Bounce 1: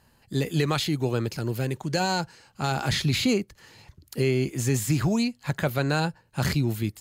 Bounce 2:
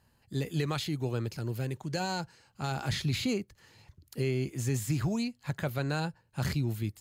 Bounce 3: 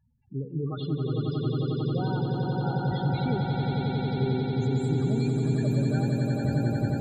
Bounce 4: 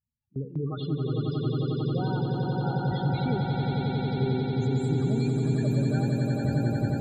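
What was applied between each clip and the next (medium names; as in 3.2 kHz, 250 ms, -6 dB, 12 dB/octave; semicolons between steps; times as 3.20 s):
peaking EQ 96 Hz +4.5 dB 1.2 oct; trim -8 dB
loudest bins only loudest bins 8; echo with a slow build-up 90 ms, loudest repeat 8, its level -5 dB
gate with hold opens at -26 dBFS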